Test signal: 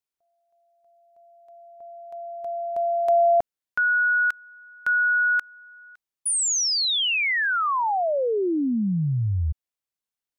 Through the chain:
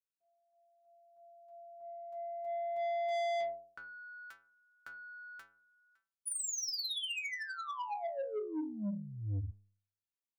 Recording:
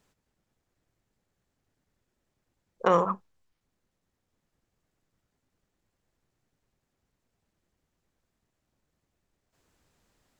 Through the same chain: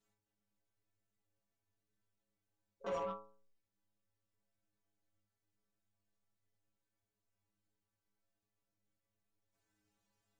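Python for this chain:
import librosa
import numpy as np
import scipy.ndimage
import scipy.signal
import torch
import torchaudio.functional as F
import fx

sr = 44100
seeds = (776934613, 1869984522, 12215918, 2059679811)

y = fx.stiff_resonator(x, sr, f0_hz=100.0, decay_s=0.57, stiffness=0.008)
y = 10.0 ** (-32.0 / 20.0) * np.tanh(y / 10.0 ** (-32.0 / 20.0))
y = fx.dynamic_eq(y, sr, hz=1500.0, q=1.6, threshold_db=-54.0, ratio=4.0, max_db=-5)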